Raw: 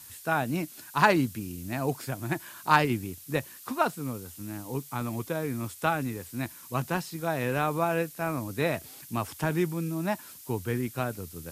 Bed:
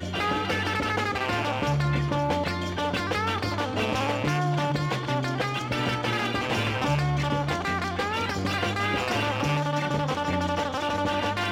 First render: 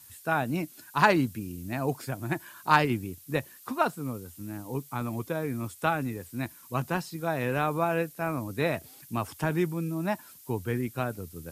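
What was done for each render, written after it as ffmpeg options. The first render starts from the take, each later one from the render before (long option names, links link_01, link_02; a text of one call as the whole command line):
ffmpeg -i in.wav -af "afftdn=noise_reduction=6:noise_floor=-48" out.wav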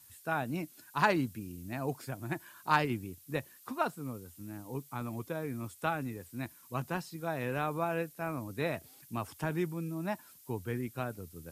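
ffmpeg -i in.wav -af "volume=-6dB" out.wav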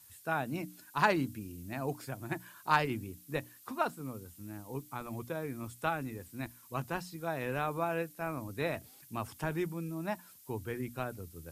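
ffmpeg -i in.wav -af "bandreject=frequency=60:width_type=h:width=6,bandreject=frequency=120:width_type=h:width=6,bandreject=frequency=180:width_type=h:width=6,bandreject=frequency=240:width_type=h:width=6,bandreject=frequency=300:width_type=h:width=6,asubboost=boost=2:cutoff=80" out.wav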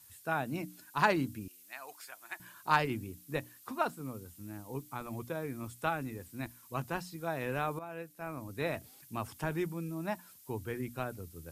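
ffmpeg -i in.wav -filter_complex "[0:a]asettb=1/sr,asplit=3[link_01][link_02][link_03];[link_01]atrim=end=1.484[link_04];[link_02]atrim=start=1.48:end=2.4,asetpts=PTS-STARTPTS,afade=type=in:duration=0.004:curve=qsin,afade=type=out:start_time=0.916:duration=0.004:curve=qsin,highpass=1200[link_05];[link_03]atrim=start=2.396[link_06];[link_04][link_05]acrossfade=duration=0.004:curve1=hsin:curve2=qsin[link_07];[link_07][link_06]acrossfade=duration=0.004:curve1=qsin:curve2=hsin,asplit=2[link_08][link_09];[link_08]atrim=end=7.79,asetpts=PTS-STARTPTS,afade=type=out:start_time=7.786:duration=0.004:curve=hsin:silence=0.211349[link_10];[link_09]atrim=start=7.79,asetpts=PTS-STARTPTS,afade=type=in:duration=0.93:silence=0.211349[link_11];[link_10][link_11]concat=n=2:v=0:a=1" out.wav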